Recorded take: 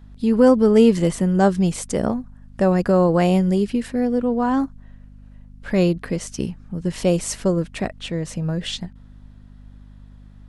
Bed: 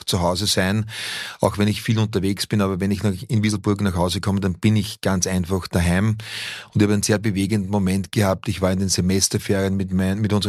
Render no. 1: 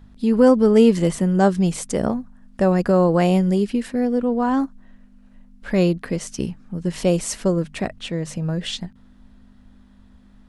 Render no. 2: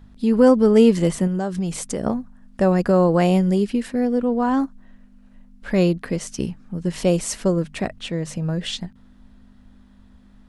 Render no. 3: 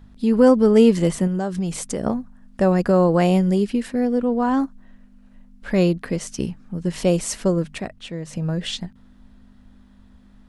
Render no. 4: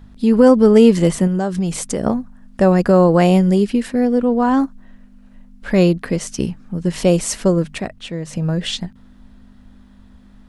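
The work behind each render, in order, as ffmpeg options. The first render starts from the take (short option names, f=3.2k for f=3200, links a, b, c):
-af "bandreject=f=50:t=h:w=4,bandreject=f=100:t=h:w=4,bandreject=f=150:t=h:w=4"
-filter_complex "[0:a]asettb=1/sr,asplit=3[a][b][c];[a]atrim=end=1.274[d];[b]atrim=start=1.27:end=2.06,asetpts=PTS-STARTPTS,afade=t=in:d=0.004:c=qsin,afade=t=out:st=0.786:d=0.004:c=qsin,acompressor=threshold=-20dB:ratio=6:attack=3.2:release=140:knee=1:detection=peak[e];[c]atrim=start=2.056[f];[d][e]acrossfade=d=0.004:c1=hsin:c2=qsin[g];[g][f]acrossfade=d=0.004:c1=qsin:c2=hsin"
-filter_complex "[0:a]asplit=3[a][b][c];[a]atrim=end=7.782[d];[b]atrim=start=7.778:end=8.332,asetpts=PTS-STARTPTS,volume=-5dB[e];[c]atrim=start=8.328[f];[d][e]acrossfade=d=0.004:c1=hsin:c2=hsin[g];[g][f]acrossfade=d=0.004:c1=hsin:c2=hsin"
-af "volume=4.5dB,alimiter=limit=-1dB:level=0:latency=1"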